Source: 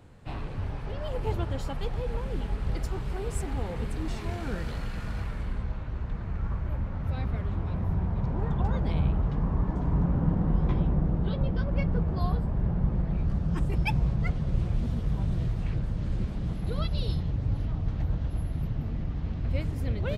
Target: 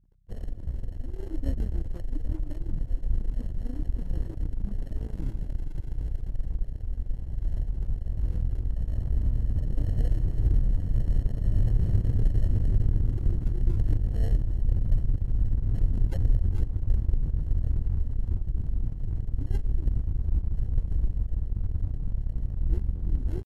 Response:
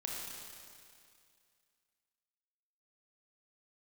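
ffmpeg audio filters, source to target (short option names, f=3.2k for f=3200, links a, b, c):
-filter_complex "[0:a]lowpass=f=2.1k:w=0.5412,lowpass=f=2.1k:w=1.3066,lowshelf=f=210:g=11,aeval=exprs='0.422*(cos(1*acos(clip(val(0)/0.422,-1,1)))-cos(1*PI/2))+0.0211*(cos(3*acos(clip(val(0)/0.422,-1,1)))-cos(3*PI/2))+0.0211*(cos(4*acos(clip(val(0)/0.422,-1,1)))-cos(4*PI/2))+0.0211*(cos(8*acos(clip(val(0)/0.422,-1,1)))-cos(8*PI/2))':c=same,atempo=0.86,acrossover=split=890[a][b];[b]acrusher=samples=23:mix=1:aa=0.000001[c];[a][c]amix=inputs=2:normalize=0,aeval=exprs='sgn(val(0))*max(abs(val(0))-0.0106,0)':c=same,aeval=exprs='val(0)+0.00141*(sin(2*PI*50*n/s)+sin(2*PI*2*50*n/s)/2+sin(2*PI*3*50*n/s)/3+sin(2*PI*4*50*n/s)/4+sin(2*PI*5*50*n/s)/5)':c=same,asetrate=27781,aresample=44100,atempo=1.5874,volume=-5dB"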